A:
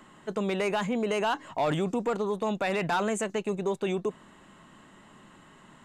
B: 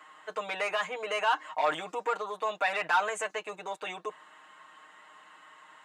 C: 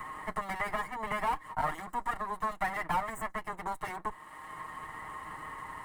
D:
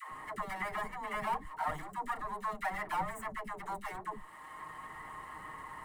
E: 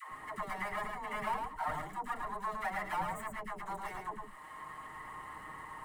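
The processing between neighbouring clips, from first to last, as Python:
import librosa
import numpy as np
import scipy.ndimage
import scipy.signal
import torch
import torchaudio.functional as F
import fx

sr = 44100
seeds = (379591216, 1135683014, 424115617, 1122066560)

y1 = scipy.signal.sosfilt(scipy.signal.butter(2, 1000.0, 'highpass', fs=sr, output='sos'), x)
y1 = fx.high_shelf(y1, sr, hz=3100.0, db=-11.5)
y1 = y1 + 0.94 * np.pad(y1, (int(6.5 * sr / 1000.0), 0))[:len(y1)]
y1 = F.gain(torch.from_numpy(y1), 4.0).numpy()
y2 = fx.lower_of_two(y1, sr, delay_ms=1.0)
y2 = fx.band_shelf(y2, sr, hz=4100.0, db=-14.0, octaves=1.7)
y2 = fx.band_squash(y2, sr, depth_pct=70)
y3 = fx.dispersion(y2, sr, late='lows', ms=119.0, hz=440.0)
y3 = F.gain(torch.from_numpy(y3), -3.5).numpy()
y4 = y3 + 10.0 ** (-5.0 / 20.0) * np.pad(y3, (int(109 * sr / 1000.0), 0))[:len(y3)]
y4 = F.gain(torch.from_numpy(y4), -1.5).numpy()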